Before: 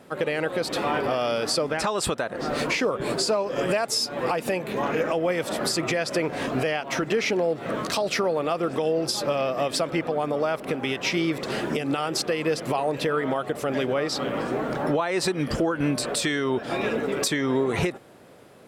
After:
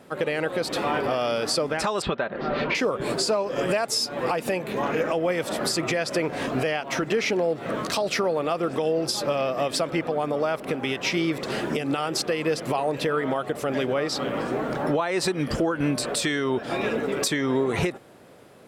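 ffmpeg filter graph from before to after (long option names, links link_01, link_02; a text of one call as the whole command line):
ffmpeg -i in.wav -filter_complex "[0:a]asettb=1/sr,asplit=3[link_01][link_02][link_03];[link_01]atrim=end=2.024[link_04];[link_02]atrim=start=2.02:end=2.75,asetpts=PTS-STARTPTS,afade=type=in:duration=0.004:curve=qsin,afade=type=out:start_time=0.726:duration=0.004:curve=qsin,lowpass=frequency=3700:width=0.5412,lowpass=frequency=3700:width=1.3066,aecho=1:1:5.1:0.38,atrim=end_sample=32193[link_05];[link_03]atrim=start=2.746[link_06];[link_04][link_05]acrossfade=duration=0.004:curve1=hsin:curve2=qsin[link_07];[link_07][link_06]acrossfade=duration=0.004:curve1=qsin:curve2=hsin" out.wav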